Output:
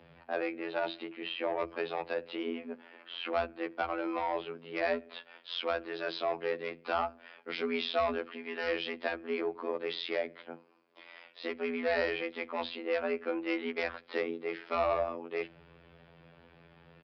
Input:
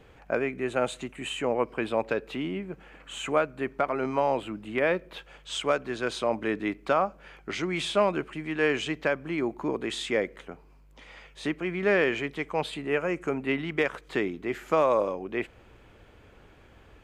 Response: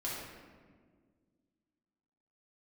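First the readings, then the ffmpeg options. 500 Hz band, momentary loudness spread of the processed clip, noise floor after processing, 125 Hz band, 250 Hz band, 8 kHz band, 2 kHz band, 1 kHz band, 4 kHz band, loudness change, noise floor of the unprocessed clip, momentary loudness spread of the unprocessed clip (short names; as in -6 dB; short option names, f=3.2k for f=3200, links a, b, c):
-6.0 dB, 10 LU, -60 dBFS, -16.5 dB, -8.0 dB, under -25 dB, -6.0 dB, -5.0 dB, -3.5 dB, -6.0 dB, -55 dBFS, 10 LU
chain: -af "bandreject=f=50:t=h:w=6,bandreject=f=100:t=h:w=6,bandreject=f=150:t=h:w=6,bandreject=f=200:t=h:w=6,bandreject=f=250:t=h:w=6,aresample=11025,asoftclip=type=tanh:threshold=-20dB,aresample=44100,afftfilt=real='hypot(re,im)*cos(PI*b)':imag='0':win_size=2048:overlap=0.75,afreqshift=73"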